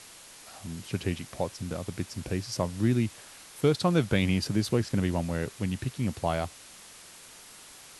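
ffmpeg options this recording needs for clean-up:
ffmpeg -i in.wav -af "afwtdn=0.0045" out.wav

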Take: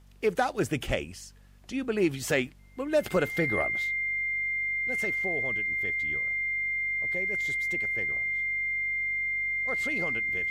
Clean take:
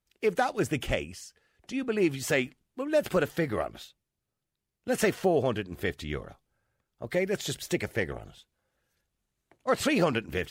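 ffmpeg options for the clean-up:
ffmpeg -i in.wav -af "bandreject=frequency=48.2:width_type=h:width=4,bandreject=frequency=96.4:width_type=h:width=4,bandreject=frequency=144.6:width_type=h:width=4,bandreject=frequency=192.8:width_type=h:width=4,bandreject=frequency=241:width_type=h:width=4,bandreject=frequency=2100:width=30,agate=range=-21dB:threshold=-37dB,asetnsamples=nb_out_samples=441:pad=0,asendcmd='4.21 volume volume 11.5dB',volume=0dB" out.wav

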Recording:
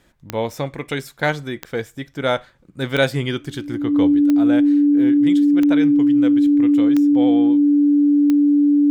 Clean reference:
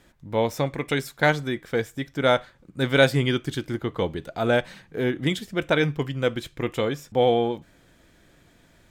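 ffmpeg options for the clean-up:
ffmpeg -i in.wav -af "adeclick=threshold=4,bandreject=frequency=290:width=30,asetnsamples=nb_out_samples=441:pad=0,asendcmd='4.13 volume volume 5.5dB',volume=0dB" out.wav

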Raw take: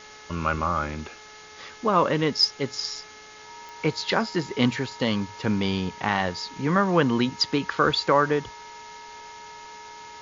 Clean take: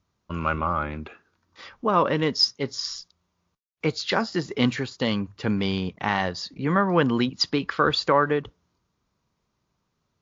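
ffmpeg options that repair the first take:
ffmpeg -i in.wav -af "adeclick=threshold=4,bandreject=frequency=427.1:width_type=h:width=4,bandreject=frequency=854.2:width_type=h:width=4,bandreject=frequency=1281.3:width_type=h:width=4,bandreject=frequency=1708.4:width_type=h:width=4,bandreject=frequency=2135.5:width_type=h:width=4,bandreject=frequency=940:width=30,afftdn=noise_reduction=30:noise_floor=-46" out.wav

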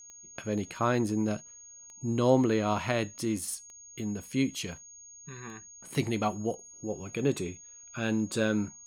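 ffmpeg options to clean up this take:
ffmpeg -i in.wav -af "adeclick=threshold=4,bandreject=frequency=6600:width=30" out.wav

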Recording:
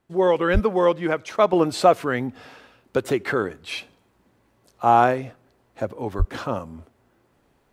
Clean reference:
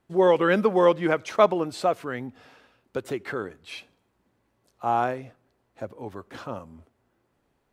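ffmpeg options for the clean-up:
ffmpeg -i in.wav -filter_complex "[0:a]asplit=3[link_01][link_02][link_03];[link_01]afade=type=out:start_time=0.53:duration=0.02[link_04];[link_02]highpass=frequency=140:width=0.5412,highpass=frequency=140:width=1.3066,afade=type=in:start_time=0.53:duration=0.02,afade=type=out:start_time=0.65:duration=0.02[link_05];[link_03]afade=type=in:start_time=0.65:duration=0.02[link_06];[link_04][link_05][link_06]amix=inputs=3:normalize=0,asplit=3[link_07][link_08][link_09];[link_07]afade=type=out:start_time=6.18:duration=0.02[link_10];[link_08]highpass=frequency=140:width=0.5412,highpass=frequency=140:width=1.3066,afade=type=in:start_time=6.18:duration=0.02,afade=type=out:start_time=6.3:duration=0.02[link_11];[link_09]afade=type=in:start_time=6.3:duration=0.02[link_12];[link_10][link_11][link_12]amix=inputs=3:normalize=0,asetnsamples=nb_out_samples=441:pad=0,asendcmd='1.53 volume volume -8dB',volume=0dB" out.wav

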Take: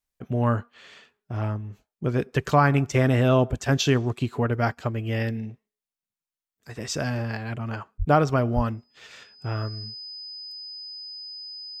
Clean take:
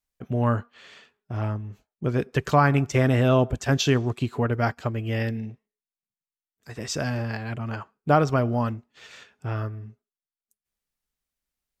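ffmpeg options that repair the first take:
ffmpeg -i in.wav -filter_complex "[0:a]bandreject=frequency=5000:width=30,asplit=3[link_01][link_02][link_03];[link_01]afade=type=out:start_time=7.98:duration=0.02[link_04];[link_02]highpass=frequency=140:width=0.5412,highpass=frequency=140:width=1.3066,afade=type=in:start_time=7.98:duration=0.02,afade=type=out:start_time=8.1:duration=0.02[link_05];[link_03]afade=type=in:start_time=8.1:duration=0.02[link_06];[link_04][link_05][link_06]amix=inputs=3:normalize=0,asplit=3[link_07][link_08][link_09];[link_07]afade=type=out:start_time=8.55:duration=0.02[link_10];[link_08]highpass=frequency=140:width=0.5412,highpass=frequency=140:width=1.3066,afade=type=in:start_time=8.55:duration=0.02,afade=type=out:start_time=8.67:duration=0.02[link_11];[link_09]afade=type=in:start_time=8.67:duration=0.02[link_12];[link_10][link_11][link_12]amix=inputs=3:normalize=0" out.wav

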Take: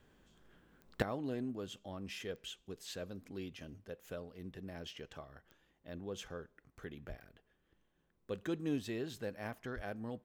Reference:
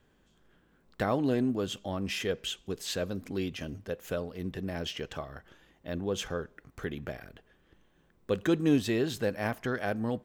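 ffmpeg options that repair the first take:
ffmpeg -i in.wav -filter_complex "[0:a]adeclick=threshold=4,asplit=3[link_01][link_02][link_03];[link_01]afade=type=out:start_time=7.08:duration=0.02[link_04];[link_02]highpass=frequency=140:width=0.5412,highpass=frequency=140:width=1.3066,afade=type=in:start_time=7.08:duration=0.02,afade=type=out:start_time=7.2:duration=0.02[link_05];[link_03]afade=type=in:start_time=7.2:duration=0.02[link_06];[link_04][link_05][link_06]amix=inputs=3:normalize=0,asplit=3[link_07][link_08][link_09];[link_07]afade=type=out:start_time=9.75:duration=0.02[link_10];[link_08]highpass=frequency=140:width=0.5412,highpass=frequency=140:width=1.3066,afade=type=in:start_time=9.75:duration=0.02,afade=type=out:start_time=9.87:duration=0.02[link_11];[link_09]afade=type=in:start_time=9.87:duration=0.02[link_12];[link_10][link_11][link_12]amix=inputs=3:normalize=0,asetnsamples=nb_out_samples=441:pad=0,asendcmd='1.02 volume volume 11.5dB',volume=0dB" out.wav

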